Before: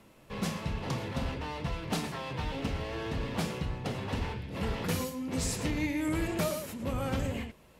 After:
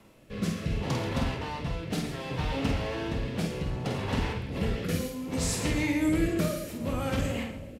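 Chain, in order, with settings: doubling 48 ms -5.5 dB; two-band feedback delay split 750 Hz, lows 375 ms, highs 136 ms, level -15 dB; rotary cabinet horn 0.65 Hz; trim +4 dB

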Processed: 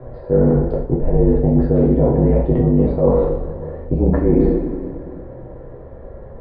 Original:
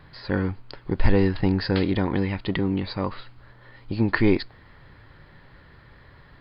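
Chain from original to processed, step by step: resonant low-pass 570 Hz, resonance Q 4.4; in parallel at +2 dB: gain riding within 4 dB 0.5 s; on the sum: two-slope reverb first 0.67 s, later 2.4 s, DRR -5.5 dB; reverse; compression 6:1, threshold -13 dBFS, peak gain reduction 14 dB; reverse; frequency shift -39 Hz; trim +2 dB

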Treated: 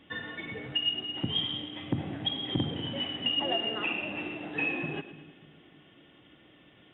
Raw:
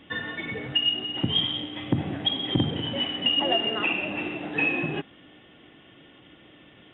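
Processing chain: two-band feedback delay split 320 Hz, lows 294 ms, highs 111 ms, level -14 dB; trim -6 dB

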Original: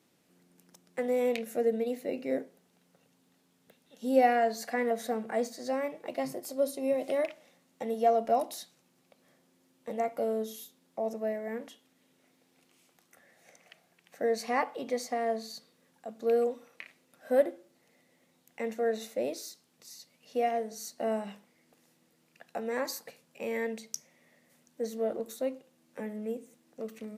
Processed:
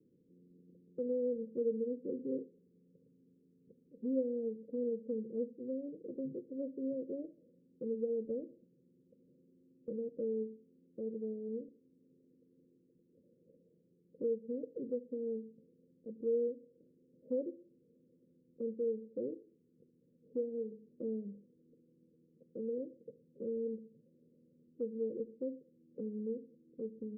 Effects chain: steep low-pass 510 Hz 96 dB/octave; compression 1.5:1, threshold -48 dBFS, peak gain reduction 9.5 dB; trim +2.5 dB

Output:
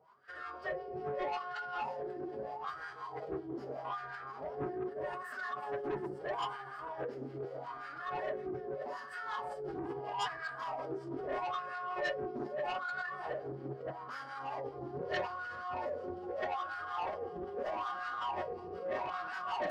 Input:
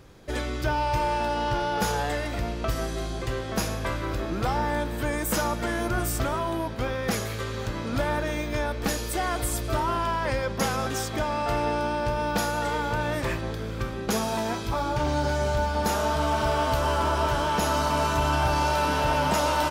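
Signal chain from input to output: peaking EQ 4.6 kHz +6.5 dB 0.25 oct; echo whose repeats swap between lows and highs 174 ms, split 1.3 kHz, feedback 84%, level -10.5 dB; reverberation RT60 0.55 s, pre-delay 7 ms, DRR 4 dB; peak limiter -16 dBFS, peak gain reduction 6.5 dB; wah-wah 0.79 Hz 320–1500 Hz, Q 7.3; rippled EQ curve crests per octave 1.3, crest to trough 6 dB; harmonic tremolo 5.4 Hz, depth 70%, crossover 830 Hz; saturation -35 dBFS, distortion -11 dB; de-hum 81.76 Hz, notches 25; formant-preserving pitch shift +3.5 st; loudspeaker Doppler distortion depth 0.21 ms; trim +4 dB

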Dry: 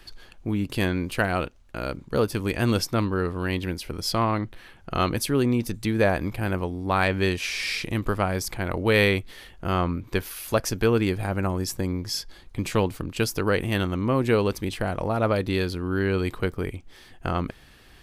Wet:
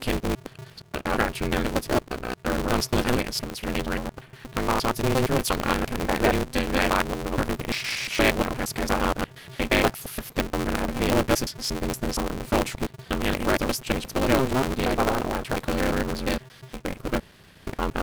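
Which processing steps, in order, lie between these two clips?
slices played last to first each 117 ms, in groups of 7; polarity switched at an audio rate 130 Hz

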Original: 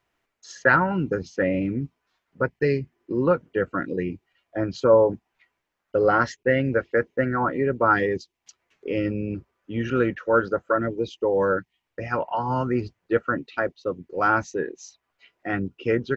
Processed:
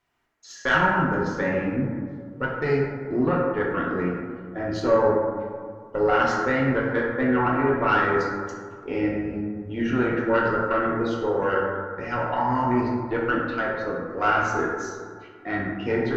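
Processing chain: peaking EQ 500 Hz -5.5 dB 0.39 oct; in parallel at -2 dB: peak limiter -17.5 dBFS, peak gain reduction 11.5 dB; on the sum: valve stage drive 9 dB, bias 0.65; plate-style reverb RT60 1.9 s, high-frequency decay 0.35×, DRR -4 dB; trim -4 dB

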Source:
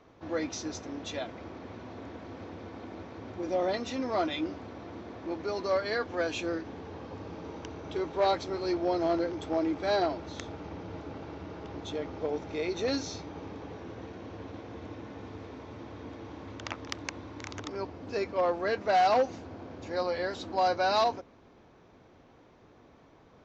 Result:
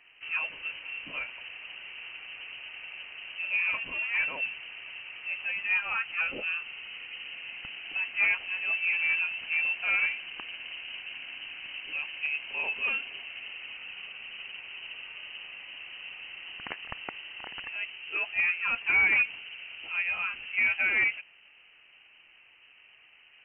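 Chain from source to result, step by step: frequency inversion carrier 3 kHz

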